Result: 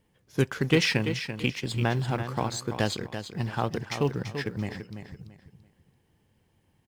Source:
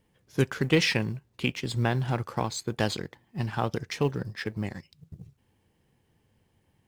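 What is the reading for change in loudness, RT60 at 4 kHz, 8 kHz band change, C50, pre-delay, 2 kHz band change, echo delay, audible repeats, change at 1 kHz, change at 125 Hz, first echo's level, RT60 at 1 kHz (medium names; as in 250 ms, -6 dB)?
+0.5 dB, no reverb, +0.5 dB, no reverb, no reverb, +0.5 dB, 337 ms, 3, +0.5 dB, +0.5 dB, -9.0 dB, no reverb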